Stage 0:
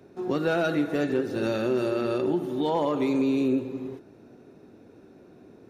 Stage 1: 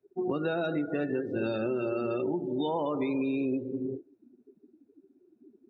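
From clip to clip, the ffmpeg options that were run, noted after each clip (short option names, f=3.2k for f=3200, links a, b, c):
-filter_complex "[0:a]afftdn=nr=34:nf=-34,acrossover=split=1200|3100[a][b][c];[a]acompressor=threshold=-35dB:ratio=4[d];[b]acompressor=threshold=-51dB:ratio=4[e];[c]acompressor=threshold=-53dB:ratio=4[f];[d][e][f]amix=inputs=3:normalize=0,volume=5.5dB"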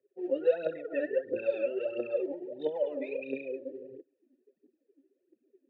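-filter_complex "[0:a]aphaser=in_gain=1:out_gain=1:delay=3.8:decay=0.76:speed=1.5:type=triangular,asplit=3[a][b][c];[a]bandpass=f=530:t=q:w=8,volume=0dB[d];[b]bandpass=f=1.84k:t=q:w=8,volume=-6dB[e];[c]bandpass=f=2.48k:t=q:w=8,volume=-9dB[f];[d][e][f]amix=inputs=3:normalize=0,volume=4dB"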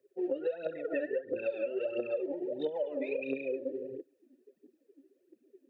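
-af "acompressor=threshold=-35dB:ratio=12,volume=5.5dB"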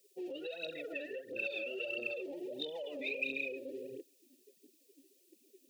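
-af "alimiter=level_in=8dB:limit=-24dB:level=0:latency=1:release=16,volume=-8dB,aexciter=amount=6.6:drive=8.6:freq=2.4k,volume=-4.5dB"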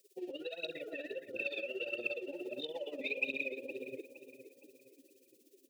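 -filter_complex "[0:a]tremolo=f=17:d=0.74,asplit=2[a][b];[b]adelay=465,lowpass=f=2.6k:p=1,volume=-11.5dB,asplit=2[c][d];[d]adelay=465,lowpass=f=2.6k:p=1,volume=0.44,asplit=2[e][f];[f]adelay=465,lowpass=f=2.6k:p=1,volume=0.44,asplit=2[g][h];[h]adelay=465,lowpass=f=2.6k:p=1,volume=0.44[i];[a][c][e][g][i]amix=inputs=5:normalize=0,volume=3dB"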